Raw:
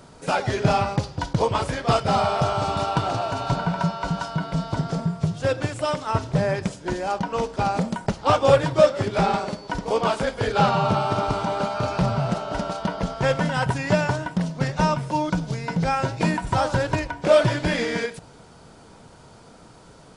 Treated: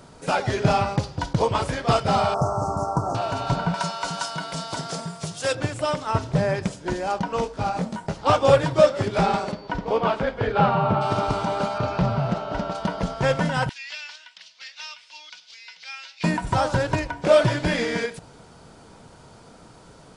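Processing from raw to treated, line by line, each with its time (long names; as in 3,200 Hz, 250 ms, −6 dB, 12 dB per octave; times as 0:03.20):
0:02.34–0:03.15: Chebyshev band-stop filter 1,200–6,000 Hz, order 3
0:03.74–0:05.55: RIAA equalisation recording
0:07.44–0:08.14: micro pitch shift up and down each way 32 cents → 12 cents
0:09.51–0:11.00: low-pass filter 4,000 Hz → 2,100 Hz
0:11.78–0:12.75: high-frequency loss of the air 110 metres
0:13.69–0:16.24: flat-topped band-pass 3,600 Hz, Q 1.2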